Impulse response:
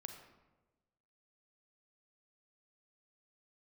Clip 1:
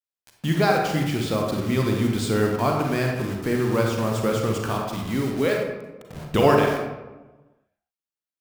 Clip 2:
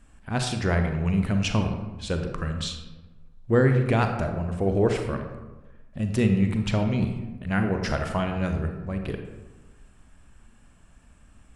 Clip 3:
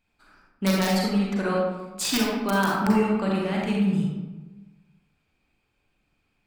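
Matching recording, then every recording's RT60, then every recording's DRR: 2; 1.2 s, 1.2 s, 1.2 s; 0.5 dB, 5.0 dB, -3.5 dB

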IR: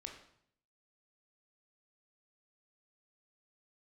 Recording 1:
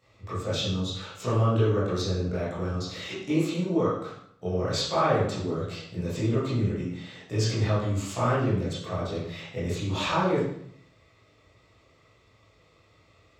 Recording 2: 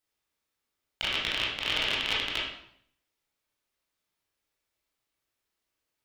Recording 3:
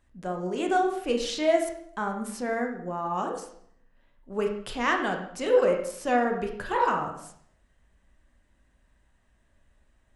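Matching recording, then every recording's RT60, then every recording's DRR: 3; 0.65 s, 0.65 s, 0.65 s; -12.5 dB, -5.5 dB, 2.0 dB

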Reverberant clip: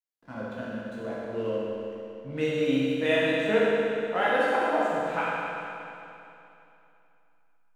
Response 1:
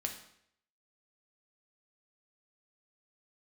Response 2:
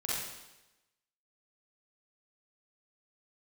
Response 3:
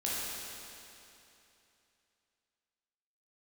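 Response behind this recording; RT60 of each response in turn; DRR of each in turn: 3; 0.70 s, 1.0 s, 2.9 s; 2.5 dB, -7.5 dB, -7.5 dB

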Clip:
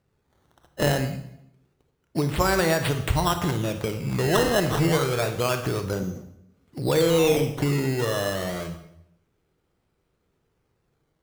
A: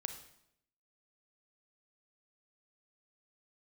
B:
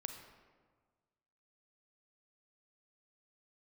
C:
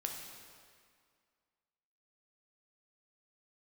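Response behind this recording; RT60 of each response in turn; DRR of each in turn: A; 0.75 s, 1.5 s, 2.0 s; 7.0 dB, 5.5 dB, 1.0 dB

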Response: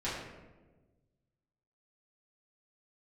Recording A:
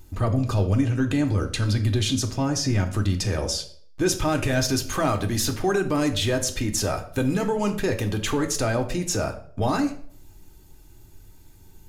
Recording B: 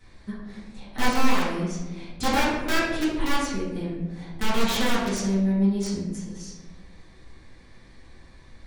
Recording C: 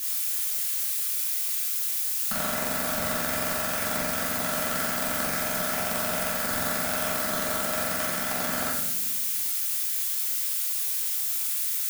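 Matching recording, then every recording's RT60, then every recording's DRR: B; 0.55 s, 1.3 s, 0.90 s; 3.5 dB, -11.0 dB, -7.0 dB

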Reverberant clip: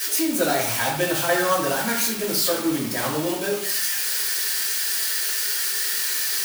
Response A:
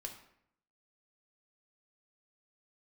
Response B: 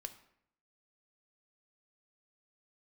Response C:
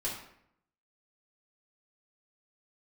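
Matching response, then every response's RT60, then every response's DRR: C; 0.70 s, 0.70 s, 0.70 s; 2.0 dB, 8.0 dB, -7.0 dB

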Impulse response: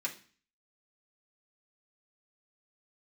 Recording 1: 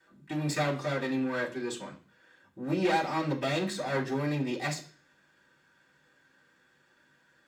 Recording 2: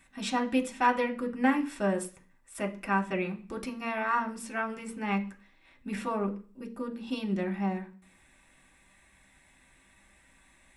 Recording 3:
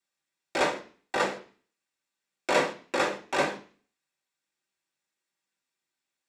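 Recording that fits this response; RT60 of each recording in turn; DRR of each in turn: 3; 0.40 s, 0.40 s, 0.40 s; -9.0 dB, 0.5 dB, -4.0 dB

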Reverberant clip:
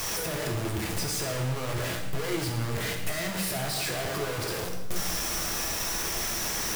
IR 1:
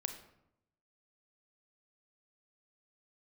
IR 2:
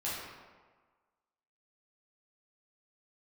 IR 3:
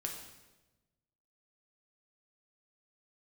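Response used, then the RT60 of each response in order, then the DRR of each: 3; 0.80 s, 1.5 s, 1.1 s; 6.5 dB, -9.0 dB, 1.0 dB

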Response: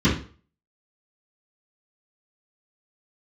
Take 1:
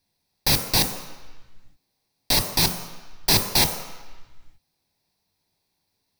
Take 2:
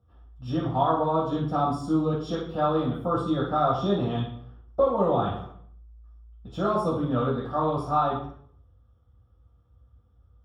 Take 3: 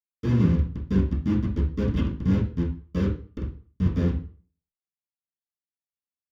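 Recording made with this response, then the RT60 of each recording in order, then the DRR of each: 3; 1.2 s, 0.60 s, 0.40 s; 5.5 dB, -5.5 dB, -11.5 dB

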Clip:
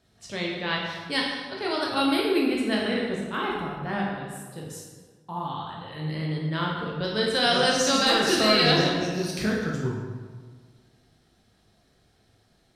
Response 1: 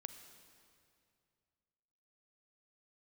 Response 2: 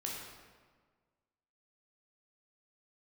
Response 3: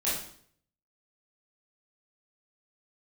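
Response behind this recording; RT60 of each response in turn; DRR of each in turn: 2; 2.4 s, 1.6 s, 0.60 s; 8.5 dB, -3.0 dB, -9.5 dB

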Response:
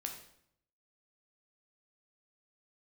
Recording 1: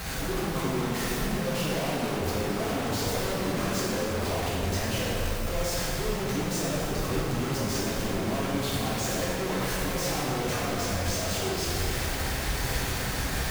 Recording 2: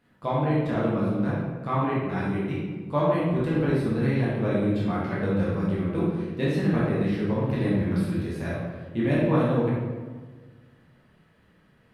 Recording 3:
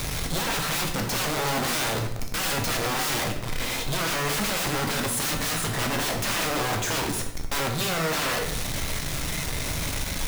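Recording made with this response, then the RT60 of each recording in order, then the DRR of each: 3; 2.7 s, 1.4 s, 0.70 s; -8.0 dB, -7.5 dB, 2.5 dB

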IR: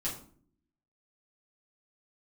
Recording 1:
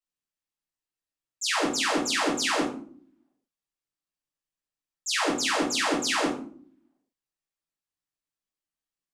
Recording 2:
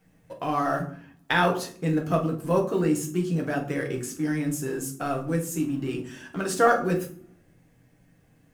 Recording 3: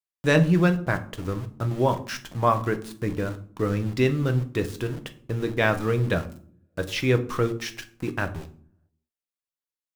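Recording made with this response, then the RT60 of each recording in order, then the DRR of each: 1; 0.55 s, 0.55 s, 0.55 s; -8.0 dB, 0.5 dB, 7.0 dB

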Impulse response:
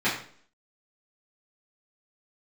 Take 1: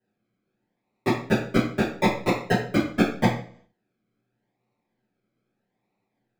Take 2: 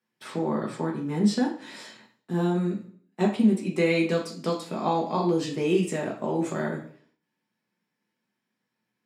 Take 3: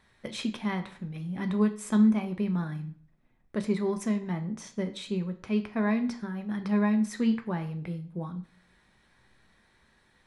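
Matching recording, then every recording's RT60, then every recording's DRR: 1; 0.50 s, 0.50 s, 0.50 s; -12.0 dB, -2.0 dB, 6.5 dB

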